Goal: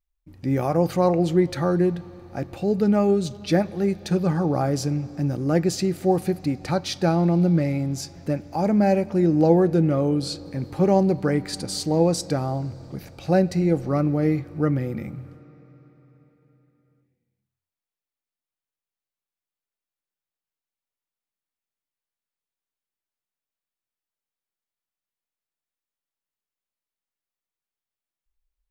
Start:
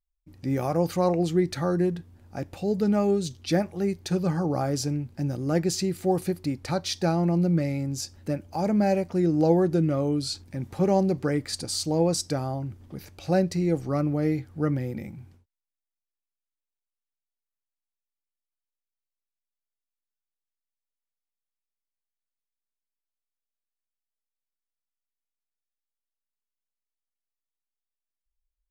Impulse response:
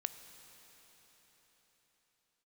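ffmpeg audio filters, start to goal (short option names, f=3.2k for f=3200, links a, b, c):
-filter_complex "[0:a]asplit=2[a][b];[1:a]atrim=start_sample=2205,lowpass=4.2k[c];[b][c]afir=irnorm=-1:irlink=0,volume=-4dB[d];[a][d]amix=inputs=2:normalize=0"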